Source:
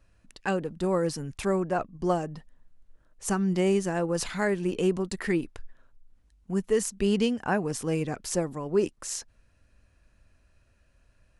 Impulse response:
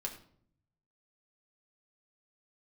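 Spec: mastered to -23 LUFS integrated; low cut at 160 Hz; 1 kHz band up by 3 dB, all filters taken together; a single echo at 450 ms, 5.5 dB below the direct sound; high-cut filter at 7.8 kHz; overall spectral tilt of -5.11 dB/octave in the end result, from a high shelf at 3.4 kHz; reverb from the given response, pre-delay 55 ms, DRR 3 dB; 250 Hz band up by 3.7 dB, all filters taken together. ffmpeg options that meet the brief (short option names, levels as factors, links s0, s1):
-filter_complex "[0:a]highpass=160,lowpass=7800,equalizer=f=250:t=o:g=7,equalizer=f=1000:t=o:g=3,highshelf=f=3400:g=8,aecho=1:1:450:0.531,asplit=2[s0][s1];[1:a]atrim=start_sample=2205,adelay=55[s2];[s1][s2]afir=irnorm=-1:irlink=0,volume=0.708[s3];[s0][s3]amix=inputs=2:normalize=0,volume=0.944"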